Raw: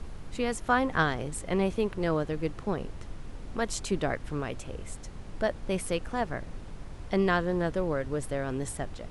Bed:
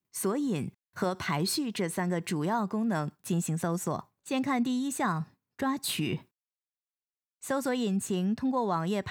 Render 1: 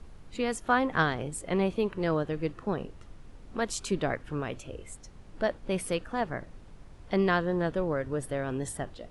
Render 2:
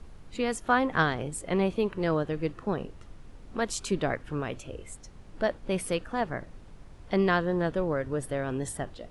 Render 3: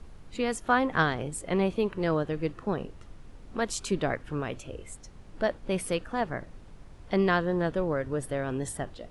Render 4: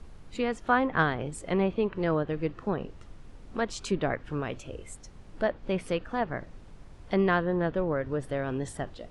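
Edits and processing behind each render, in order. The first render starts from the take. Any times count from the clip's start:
noise print and reduce 8 dB
gain +1 dB
nothing audible
treble ducked by the level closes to 3000 Hz, closed at -24 dBFS

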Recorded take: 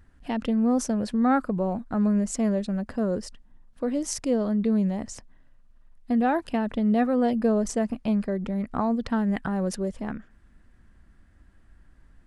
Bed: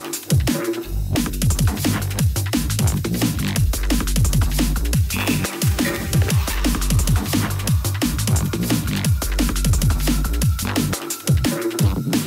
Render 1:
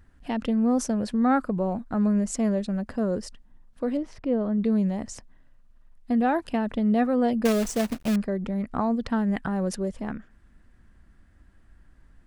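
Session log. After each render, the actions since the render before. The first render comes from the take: 3.97–4.58 air absorption 400 m; 7.45–8.16 companded quantiser 4-bit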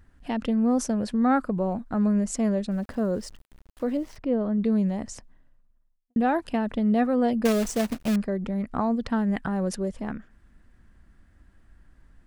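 2.71–4.17 sample gate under -48 dBFS; 5.09–6.16 studio fade out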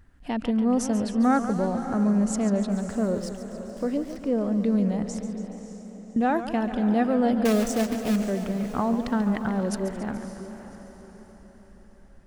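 on a send: diffused feedback echo 0.58 s, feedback 44%, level -11.5 dB; on the sum: warbling echo 0.142 s, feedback 65%, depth 133 cents, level -11.5 dB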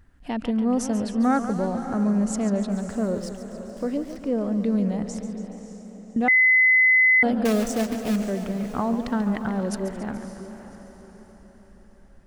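6.28–7.23 bleep 2030 Hz -13.5 dBFS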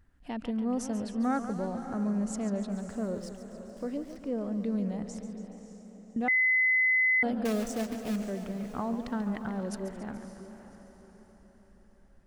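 gain -8 dB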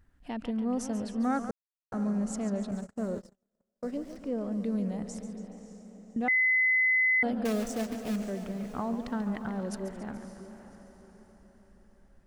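1.51–1.92 mute; 2.71–3.94 gate -38 dBFS, range -40 dB; 4.51–5.4 bell 10000 Hz +5.5 dB 0.79 oct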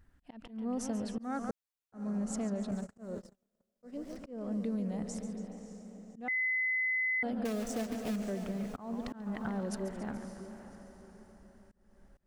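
auto swell 0.307 s; compressor 5:1, threshold -31 dBFS, peak gain reduction 7 dB

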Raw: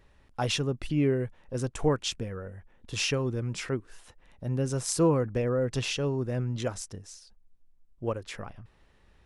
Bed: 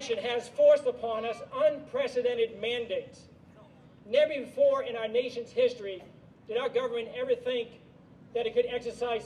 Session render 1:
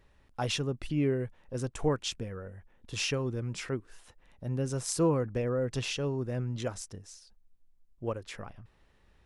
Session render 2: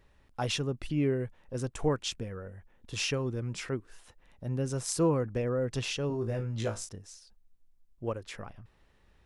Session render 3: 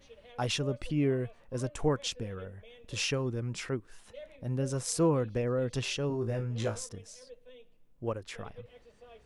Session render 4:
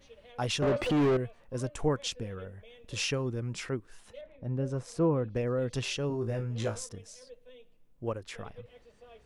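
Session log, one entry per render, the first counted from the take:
gain -3 dB
6.08–6.89 flutter echo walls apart 3.1 m, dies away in 0.21 s
add bed -23 dB
0.62–1.17 overdrive pedal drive 33 dB, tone 1100 Hz, clips at -18.5 dBFS; 4.21–5.36 LPF 1300 Hz 6 dB/oct

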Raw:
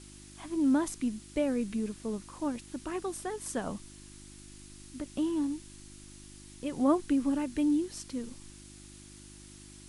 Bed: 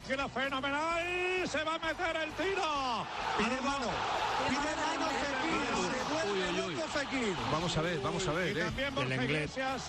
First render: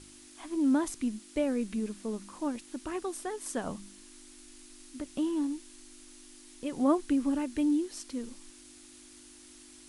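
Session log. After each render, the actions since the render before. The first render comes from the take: de-hum 50 Hz, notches 4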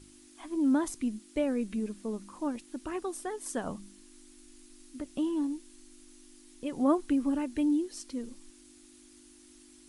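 denoiser 6 dB, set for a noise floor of -53 dBFS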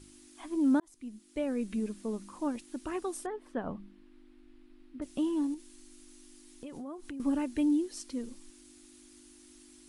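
0.8–1.76 fade in; 3.26–5.02 air absorption 440 m; 5.54–7.2 compressor, threshold -40 dBFS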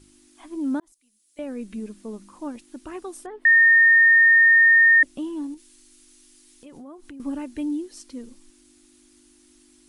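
0.92–1.39 pre-emphasis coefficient 0.97; 3.45–5.03 bleep 1830 Hz -11 dBFS; 5.57–6.66 tilt shelf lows -4.5 dB, about 1300 Hz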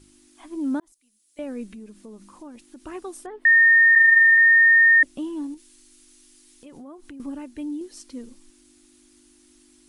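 1.66–2.84 compressor 3:1, threshold -40 dBFS; 3.95–4.38 monotone LPC vocoder at 8 kHz 260 Hz; 7.26–7.81 gain -4 dB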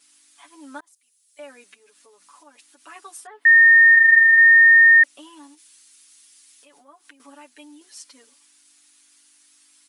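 HPF 1000 Hz 12 dB/oct; comb 7 ms, depth 96%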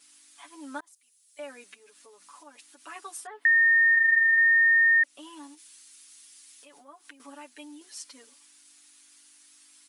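compressor 2:1, threshold -26 dBFS, peak gain reduction 9 dB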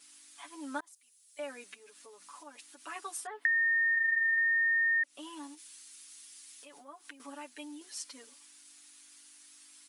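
compressor 6:1, threshold -27 dBFS, peak gain reduction 8.5 dB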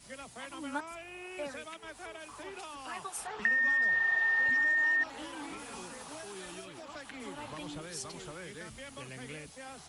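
add bed -12.5 dB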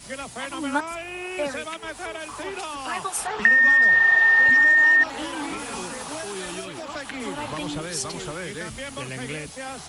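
gain +12 dB

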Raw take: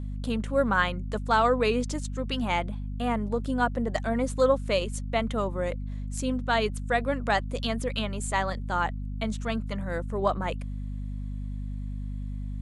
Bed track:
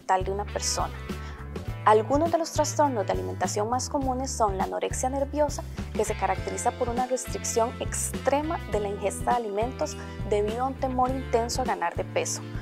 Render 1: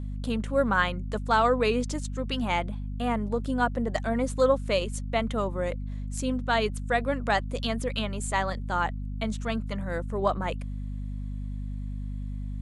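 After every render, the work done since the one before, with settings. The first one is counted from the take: nothing audible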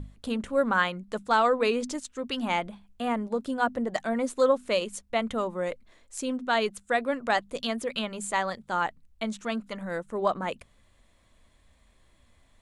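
notches 50/100/150/200/250 Hz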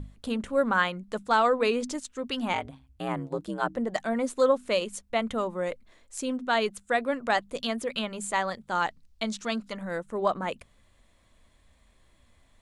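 2.53–3.77 ring modulator 64 Hz; 8.75–9.72 bell 4900 Hz +9 dB 1.1 oct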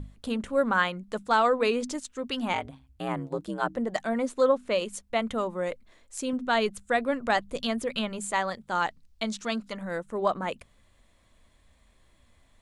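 4.22–4.78 LPF 6300 Hz -> 3100 Hz 6 dB/oct; 6.33–8.19 low shelf 140 Hz +9 dB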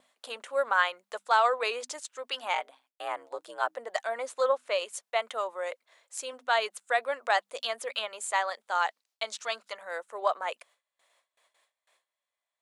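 HPF 560 Hz 24 dB/oct; gate with hold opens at -58 dBFS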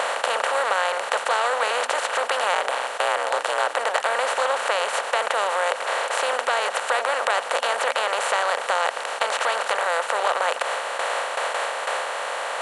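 per-bin compression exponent 0.2; compressor 2:1, threshold -21 dBFS, peak gain reduction 5.5 dB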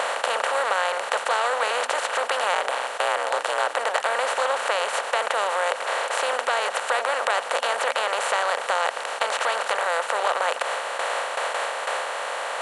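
gain -1 dB

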